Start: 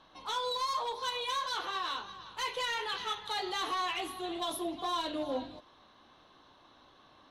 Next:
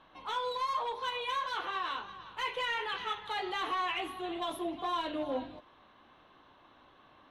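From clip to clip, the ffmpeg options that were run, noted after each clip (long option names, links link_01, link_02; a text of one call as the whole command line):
ffmpeg -i in.wav -af "highshelf=frequency=3500:width_type=q:width=1.5:gain=-8.5" out.wav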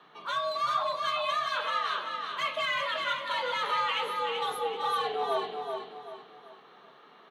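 ffmpeg -i in.wav -af "afreqshift=130,aecho=1:1:384|768|1152|1536|1920:0.562|0.208|0.077|0.0285|0.0105,volume=3.5dB" out.wav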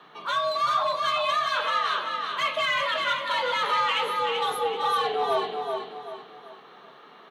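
ffmpeg -i in.wav -af "asoftclip=type=tanh:threshold=-19.5dB,volume=5.5dB" out.wav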